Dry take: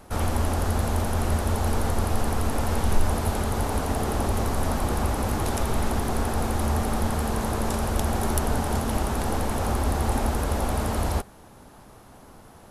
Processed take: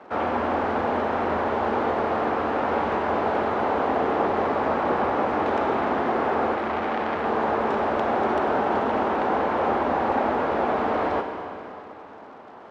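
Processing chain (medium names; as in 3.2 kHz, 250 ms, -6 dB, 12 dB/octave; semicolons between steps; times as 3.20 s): high-pass 100 Hz 12 dB/octave; three-band isolator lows -20 dB, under 270 Hz, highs -17 dB, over 2.8 kHz; crackle 290 per s -52 dBFS; distance through air 180 m; Schroeder reverb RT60 3.1 s, combs from 33 ms, DRR 5 dB; 6.55–7.25 s: transformer saturation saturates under 1.2 kHz; trim +7 dB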